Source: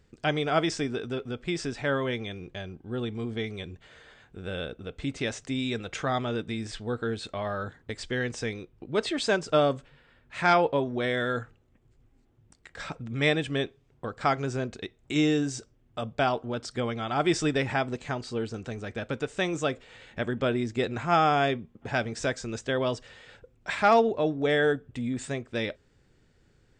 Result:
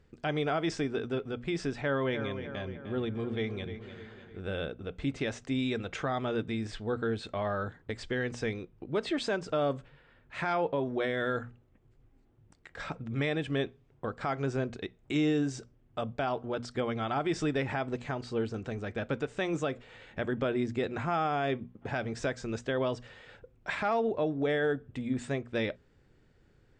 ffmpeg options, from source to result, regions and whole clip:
-filter_complex "[0:a]asettb=1/sr,asplit=3[s0][s1][s2];[s0]atrim=end=1.814[s3];[s1]atrim=start=1.81:end=4.4,asetpts=PTS-STARTPTS,afade=t=in:d=0.004:c=qsin,afade=t=out:st=2.586:d=0.004:c=qsin,lowpass=6900,asplit=2[s4][s5];[s5]adelay=303,lowpass=f=4600:p=1,volume=0.299,asplit=2[s6][s7];[s7]adelay=303,lowpass=f=4600:p=1,volume=0.51,asplit=2[s8][s9];[s9]adelay=303,lowpass=f=4600:p=1,volume=0.51,asplit=2[s10][s11];[s11]adelay=303,lowpass=f=4600:p=1,volume=0.51,asplit=2[s12][s13];[s13]adelay=303,lowpass=f=4600:p=1,volume=0.51,asplit=2[s14][s15];[s15]adelay=303,lowpass=f=4600:p=1,volume=0.51[s16];[s4][s6][s8][s10][s12][s14][s16]amix=inputs=7:normalize=0,atrim=end_sample=114219[s17];[s2]atrim=start=4.396[s18];[s3][s17]acrossfade=d=0.004:c1=hsin:c2=qsin[s19];[s19][s18]acrossfade=d=0.004:c1=qsin:c2=hsin,highshelf=f=4400:g=-11,bandreject=f=60:t=h:w=6,bandreject=f=120:t=h:w=6,bandreject=f=180:t=h:w=6,bandreject=f=240:t=h:w=6,alimiter=limit=0.0891:level=0:latency=1:release=131"

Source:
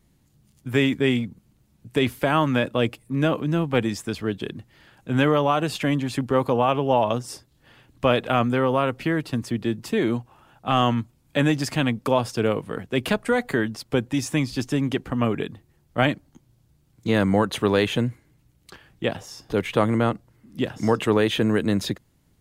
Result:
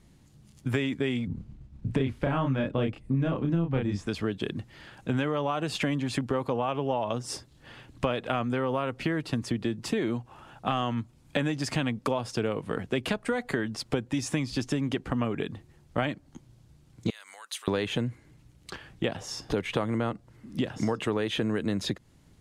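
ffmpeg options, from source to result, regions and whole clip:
-filter_complex "[0:a]asettb=1/sr,asplit=3[s0][s1][s2];[s0]atrim=end=1.274[s3];[s1]atrim=start=1.27:end=4.07,asetpts=PTS-STARTPTS,afade=t=in:d=0.004:c=qsin,afade=t=out:st=2.796:d=0.004:c=qsin,agate=range=0.0224:threshold=0.00126:ratio=3:release=100:detection=peak,aemphasis=mode=reproduction:type=bsi,asplit=2[s4][s5];[s5]adelay=30,volume=0.794[s6];[s4][s6]amix=inputs=2:normalize=0,atrim=end_sample=123480[s7];[s2]atrim=start=4.066[s8];[s3][s7]acrossfade=d=0.004:c1=hsin:c2=qsin[s9];[s9][s8]acrossfade=d=0.004:c1=qsin:c2=hsin,asettb=1/sr,asplit=3[s10][s11][s12];[s10]atrim=end=17.104[s13];[s11]atrim=start=17.1:end=17.68,asetpts=PTS-STARTPTS,afade=t=in:d=0.004:c=qsin,afade=t=out:st=0.576:d=0.004:c=qsin,highpass=910,acompressor=threshold=0.0251:ratio=3:attack=3.2:release=140:knee=1:detection=peak,aderivative[s14];[s12]atrim=start=17.676[s15];[s13][s14]acrossfade=d=0.004:c1=hsin:c2=qsin[s16];[s16][s15]acrossfade=d=0.004:c1=qsin:c2=hsin,lowpass=9400,acompressor=threshold=0.0316:ratio=6,volume=1.68"

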